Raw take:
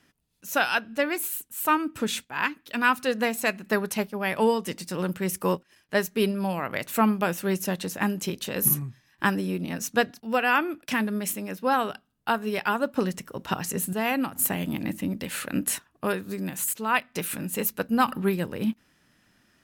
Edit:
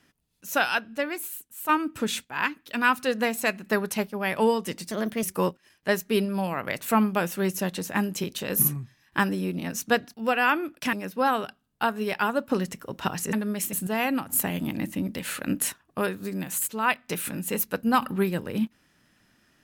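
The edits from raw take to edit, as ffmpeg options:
-filter_complex "[0:a]asplit=7[s0][s1][s2][s3][s4][s5][s6];[s0]atrim=end=1.69,asetpts=PTS-STARTPTS,afade=t=out:st=0.66:d=1.03:c=qua:silence=0.473151[s7];[s1]atrim=start=1.69:end=4.914,asetpts=PTS-STARTPTS,afade=t=in:d=0.004:c=hsin:silence=0.473151[s8];[s2]atrim=start=4.91:end=5.29,asetpts=PTS-STARTPTS,asetrate=52479,aresample=44100,atrim=end_sample=14082,asetpts=PTS-STARTPTS[s9];[s3]atrim=start=5.286:end=10.992[s10];[s4]atrim=start=11.388:end=13.792[s11];[s5]atrim=start=10.988:end=11.392[s12];[s6]atrim=start=13.788[s13];[s7][s8]concat=n=2:v=0:a=1[s14];[s14][s9]acrossfade=d=0.004:c1=hsin:c2=hsin[s15];[s15][s10]acrossfade=d=0.004:c1=hsin:c2=hsin[s16];[s16][s11]acrossfade=d=0.004:c1=hsin:c2=hsin[s17];[s17][s12]acrossfade=d=0.004:c1=hsin:c2=hsin[s18];[s18][s13]acrossfade=d=0.004:c1=hsin:c2=hsin"

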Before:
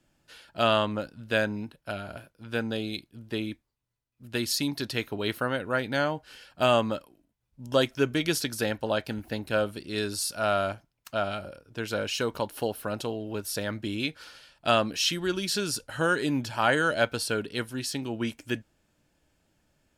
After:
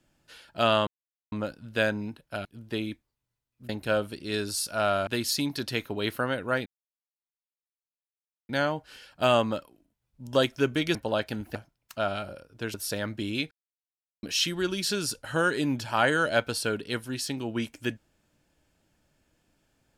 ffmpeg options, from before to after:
-filter_complex "[0:a]asplit=11[s0][s1][s2][s3][s4][s5][s6][s7][s8][s9][s10];[s0]atrim=end=0.87,asetpts=PTS-STARTPTS,afade=t=out:st=0.866:d=0.004:c=hsin,apad=pad_dur=0.45[s11];[s1]atrim=start=0.87:end=2.002,asetpts=PTS-STARTPTS,afade=t=in:d=0.004:c=hsin[s12];[s2]atrim=start=3.048:end=4.292[s13];[s3]atrim=start=9.328:end=10.712[s14];[s4]atrim=start=4.288:end=5.88,asetpts=PTS-STARTPTS,afade=t=out:st=1.588:d=0.004:c=hsin,apad=pad_dur=1.83[s15];[s5]atrim=start=5.88:end=8.342,asetpts=PTS-STARTPTS,afade=t=in:d=0.004:c=hsin[s16];[s6]atrim=start=8.728:end=9.332[s17];[s7]atrim=start=10.708:end=11.902[s18];[s8]atrim=start=13.388:end=14.16,asetpts=PTS-STARTPTS,afade=t=out:st=0.768:d=0.004:c=hsin[s19];[s9]atrim=start=14.16:end=14.88,asetpts=PTS-STARTPTS,volume=0[s20];[s10]atrim=start=14.88,asetpts=PTS-STARTPTS,afade=t=in:d=0.004:c=hsin[s21];[s11][s12]concat=n=2:v=0:a=1[s22];[s22][s13]acrossfade=d=0.004:c1=hsin:c2=hsin[s23];[s23][s14]acrossfade=d=0.004:c1=hsin:c2=hsin[s24];[s15][s16]concat=n=2:v=0:a=1[s25];[s24][s25]acrossfade=d=0.004:c1=hsin:c2=hsin[s26];[s26][s17]acrossfade=d=0.004:c1=hsin:c2=hsin[s27];[s27][s18]acrossfade=d=0.004:c1=hsin:c2=hsin[s28];[s19][s20][s21]concat=n=3:v=0:a=1[s29];[s28][s29]acrossfade=d=0.004:c1=hsin:c2=hsin"

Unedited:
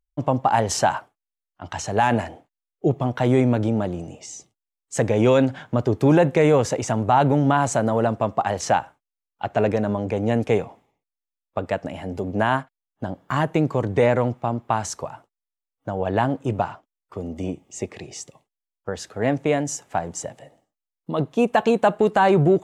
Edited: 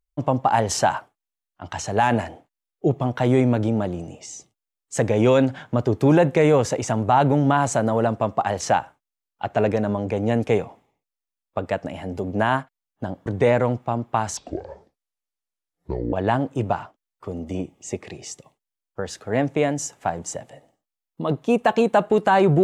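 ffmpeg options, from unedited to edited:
-filter_complex "[0:a]asplit=4[s0][s1][s2][s3];[s0]atrim=end=13.262[s4];[s1]atrim=start=13.818:end=14.934[s5];[s2]atrim=start=14.93:end=16.02,asetpts=PTS-STARTPTS,asetrate=27342,aresample=44100[s6];[s3]atrim=start=16.016[s7];[s4][s5]acrossfade=d=0.004:c1=hsin:c2=hsin[s8];[s8][s6]acrossfade=d=0.004:c1=hsin:c2=hsin[s9];[s9][s7]acrossfade=d=0.004:c1=hsin:c2=hsin"

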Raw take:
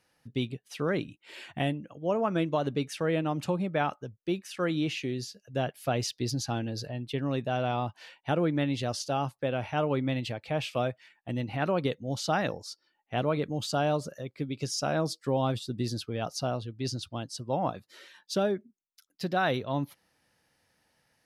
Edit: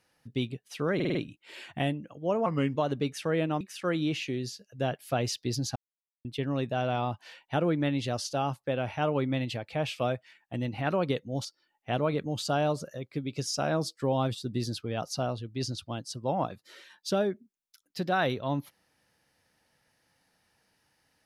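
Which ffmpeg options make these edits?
-filter_complex "[0:a]asplit=11[s0][s1][s2][s3][s4][s5][s6][s7][s8][s9][s10];[s0]atrim=end=1.002[s11];[s1]atrim=start=0.948:end=1.002[s12];[s2]atrim=start=0.948:end=1.002[s13];[s3]atrim=start=0.948:end=1.002[s14];[s4]atrim=start=0.948:end=2.264[s15];[s5]atrim=start=2.26:end=2.51,asetpts=PTS-STARTPTS,asetrate=37044,aresample=44100[s16];[s6]atrim=start=2.506:end=3.362[s17];[s7]atrim=start=4.358:end=6.51,asetpts=PTS-STARTPTS,afade=t=out:st=2.148:d=0.004:c=hsin[s18];[s8]atrim=start=6.51:end=7,asetpts=PTS-STARTPTS,volume=0[s19];[s9]atrim=start=7:end=12.202,asetpts=PTS-STARTPTS,afade=t=in:d=0.004:c=hsin[s20];[s10]atrim=start=12.688[s21];[s11][s12]acrossfade=d=0.004:c1=hsin:c2=hsin[s22];[s22][s13]acrossfade=d=0.004:c1=hsin:c2=hsin[s23];[s23][s14]acrossfade=d=0.004:c1=hsin:c2=hsin[s24];[s24][s15]acrossfade=d=0.004:c1=hsin:c2=hsin[s25];[s25][s16]acrossfade=d=0.004:c1=hsin:c2=hsin[s26];[s26][s17]acrossfade=d=0.004:c1=hsin:c2=hsin[s27];[s18][s19][s20]concat=n=3:v=0:a=1[s28];[s27][s28]acrossfade=d=0.004:c1=hsin:c2=hsin[s29];[s29][s21]acrossfade=d=0.004:c1=hsin:c2=hsin"

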